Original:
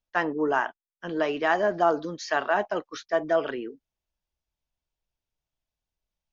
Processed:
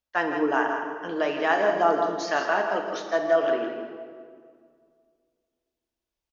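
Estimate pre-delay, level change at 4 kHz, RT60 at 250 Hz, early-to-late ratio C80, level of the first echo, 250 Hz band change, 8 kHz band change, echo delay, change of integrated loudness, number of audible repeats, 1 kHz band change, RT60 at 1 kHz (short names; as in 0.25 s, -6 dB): 3 ms, +2.0 dB, 2.3 s, 4.5 dB, -8.5 dB, +1.5 dB, n/a, 0.164 s, +2.0 dB, 1, +2.0 dB, 1.9 s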